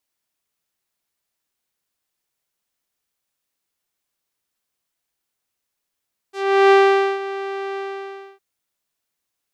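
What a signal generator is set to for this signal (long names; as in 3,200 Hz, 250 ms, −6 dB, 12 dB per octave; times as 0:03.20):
subtractive voice saw G4 12 dB per octave, low-pass 2,600 Hz, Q 0.72, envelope 2 octaves, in 0.11 s, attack 376 ms, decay 0.48 s, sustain −16 dB, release 0.62 s, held 1.44 s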